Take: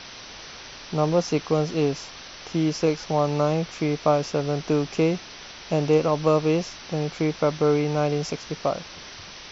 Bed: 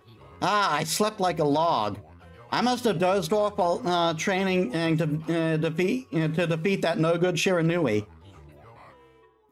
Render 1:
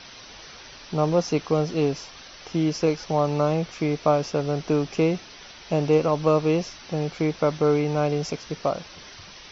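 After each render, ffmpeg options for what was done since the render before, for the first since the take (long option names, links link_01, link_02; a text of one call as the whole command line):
ffmpeg -i in.wav -af "afftdn=noise_reduction=6:noise_floor=-42" out.wav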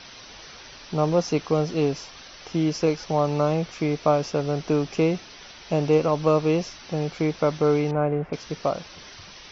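ffmpeg -i in.wav -filter_complex "[0:a]asettb=1/sr,asplit=3[link_01][link_02][link_03];[link_01]atrim=end=7.914[link_04];[link_02]atrim=start=7.91:end=8.33,asetpts=PTS-STARTPTS,afade=type=in:duration=0.004:curve=qsin,afade=type=out:start_time=0.416:duration=0.004:curve=qsin,lowpass=frequency=2000:width=0.5412,lowpass=frequency=2000:width=1.3066[link_05];[link_03]atrim=start=8.326[link_06];[link_04][link_05]acrossfade=duration=0.004:curve1=hsin:curve2=qsin[link_07];[link_07][link_06]acrossfade=duration=0.004:curve1=qsin:curve2=hsin" out.wav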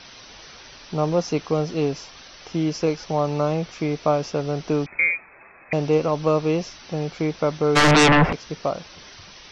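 ffmpeg -i in.wav -filter_complex "[0:a]asettb=1/sr,asplit=3[link_01][link_02][link_03];[link_01]atrim=end=4.864[link_04];[link_02]atrim=start=4.86:end=5.73,asetpts=PTS-STARTPTS,afade=type=in:duration=0.004:curve=qsin,afade=type=out:start_time=0.866:duration=0.004:curve=qsin,lowpass=frequency=2200:width_type=q:width=0.5098,lowpass=frequency=2200:width_type=q:width=0.6013,lowpass=frequency=2200:width_type=q:width=0.9,lowpass=frequency=2200:width_type=q:width=2.563,afreqshift=-2600[link_05];[link_03]atrim=start=5.726[link_06];[link_04][link_05]acrossfade=duration=0.004:curve1=hsin:curve2=qsin[link_07];[link_07][link_06]acrossfade=duration=0.004:curve1=qsin:curve2=hsin,asplit=3[link_08][link_09][link_10];[link_08]afade=type=out:start_time=7.75:duration=0.02[link_11];[link_09]aeval=exprs='0.282*sin(PI/2*7.94*val(0)/0.282)':channel_layout=same,afade=type=in:start_time=7.75:duration=0.02,afade=type=out:start_time=8.31:duration=0.02[link_12];[link_10]afade=type=in:start_time=8.31:duration=0.02[link_13];[link_11][link_12][link_13]amix=inputs=3:normalize=0" out.wav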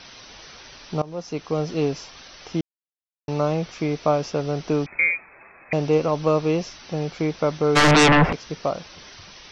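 ffmpeg -i in.wav -filter_complex "[0:a]asplit=4[link_01][link_02][link_03][link_04];[link_01]atrim=end=1.02,asetpts=PTS-STARTPTS,afade=type=out:start_time=1.016:duration=0.004:curve=hsin:silence=0.105925[link_05];[link_02]atrim=start=1.02:end=2.61,asetpts=PTS-STARTPTS,afade=type=in:duration=0.71:silence=0.105925,afade=type=out:start_time=1.586:duration=0.004:curve=hsin[link_06];[link_03]atrim=start=2.61:end=3.28,asetpts=PTS-STARTPTS,volume=0[link_07];[link_04]atrim=start=3.28,asetpts=PTS-STARTPTS,afade=type=in:duration=0.004:curve=hsin[link_08];[link_05][link_06][link_07][link_08]concat=n=4:v=0:a=1" out.wav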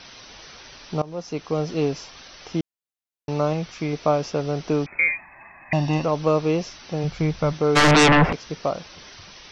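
ffmpeg -i in.wav -filter_complex "[0:a]asettb=1/sr,asplit=3[link_01][link_02][link_03];[link_01]atrim=end=3.534[link_04];[link_02]atrim=start=3.53:end=3.93,asetpts=PTS-STARTPTS,afade=type=in:duration=0.004:curve=qsin,afade=type=out:start_time=0.396:duration=0.004:curve=qsin,equalizer=frequency=490:width=0.88:gain=-4.5[link_05];[link_03]atrim=start=3.926[link_06];[link_04][link_05]acrossfade=duration=0.004:curve1=hsin:curve2=qsin[link_07];[link_07][link_06]acrossfade=duration=0.004:curve1=qsin:curve2=hsin,asettb=1/sr,asplit=3[link_08][link_09][link_10];[link_08]atrim=end=5.084[link_11];[link_09]atrim=start=5.08:end=6.05,asetpts=PTS-STARTPTS,afade=type=in:duration=0.004:curve=qsin,afade=type=out:start_time=0.966:duration=0.004:curve=qsin,aecho=1:1:1.1:0.86,atrim=end_sample=42777[link_12];[link_10]atrim=start=6.046[link_13];[link_11][link_12]acrossfade=duration=0.004:curve1=hsin:curve2=qsin[link_14];[link_14][link_13]acrossfade=duration=0.004:curve1=qsin:curve2=hsin,asplit=3[link_15][link_16][link_17];[link_15]afade=type=out:start_time=7.03:duration=0.02[link_18];[link_16]asubboost=boost=5:cutoff=140,afade=type=in:start_time=7.03:duration=0.02,afade=type=out:start_time=7.52:duration=0.02[link_19];[link_17]afade=type=in:start_time=7.52:duration=0.02[link_20];[link_18][link_19][link_20]amix=inputs=3:normalize=0" out.wav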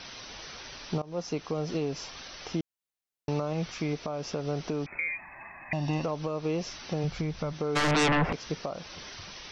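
ffmpeg -i in.wav -af "acompressor=threshold=-23dB:ratio=6,alimiter=limit=-20.5dB:level=0:latency=1:release=274" out.wav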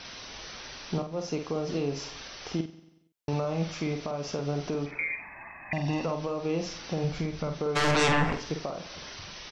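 ffmpeg -i in.wav -filter_complex "[0:a]asplit=2[link_01][link_02];[link_02]adelay=49,volume=-6.5dB[link_03];[link_01][link_03]amix=inputs=2:normalize=0,aecho=1:1:93|186|279|372|465:0.141|0.0749|0.0397|0.021|0.0111" out.wav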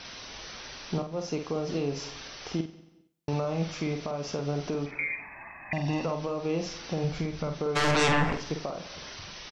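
ffmpeg -i in.wav -filter_complex "[0:a]asplit=2[link_01][link_02];[link_02]adelay=200,lowpass=frequency=2000:poles=1,volume=-23dB,asplit=2[link_03][link_04];[link_04]adelay=200,lowpass=frequency=2000:poles=1,volume=0.37[link_05];[link_01][link_03][link_05]amix=inputs=3:normalize=0" out.wav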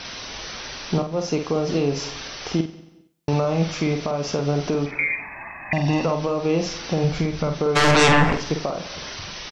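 ffmpeg -i in.wav -af "volume=8.5dB" out.wav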